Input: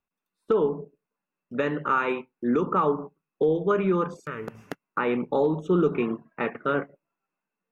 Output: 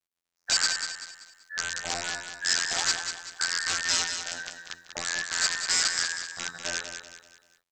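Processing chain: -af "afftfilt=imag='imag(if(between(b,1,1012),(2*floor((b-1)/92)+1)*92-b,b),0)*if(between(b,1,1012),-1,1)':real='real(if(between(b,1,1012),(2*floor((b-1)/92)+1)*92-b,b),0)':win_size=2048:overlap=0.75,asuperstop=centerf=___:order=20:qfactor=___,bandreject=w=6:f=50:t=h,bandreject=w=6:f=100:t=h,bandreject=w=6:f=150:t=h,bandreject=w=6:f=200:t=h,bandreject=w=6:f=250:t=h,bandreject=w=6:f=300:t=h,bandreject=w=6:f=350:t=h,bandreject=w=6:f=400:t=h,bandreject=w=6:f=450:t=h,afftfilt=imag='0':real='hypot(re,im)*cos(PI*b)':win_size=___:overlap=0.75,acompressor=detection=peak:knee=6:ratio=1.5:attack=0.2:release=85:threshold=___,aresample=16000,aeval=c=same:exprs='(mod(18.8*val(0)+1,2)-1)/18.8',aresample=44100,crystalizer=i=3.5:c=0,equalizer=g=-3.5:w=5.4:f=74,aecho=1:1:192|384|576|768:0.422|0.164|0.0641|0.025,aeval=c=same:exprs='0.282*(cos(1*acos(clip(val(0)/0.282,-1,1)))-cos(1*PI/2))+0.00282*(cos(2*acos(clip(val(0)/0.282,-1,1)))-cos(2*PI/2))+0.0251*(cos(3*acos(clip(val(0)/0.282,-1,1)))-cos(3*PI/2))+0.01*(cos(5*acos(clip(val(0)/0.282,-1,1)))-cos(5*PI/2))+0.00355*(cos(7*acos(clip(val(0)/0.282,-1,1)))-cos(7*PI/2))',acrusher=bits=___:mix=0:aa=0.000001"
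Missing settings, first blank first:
3100, 2.7, 2048, -32dB, 11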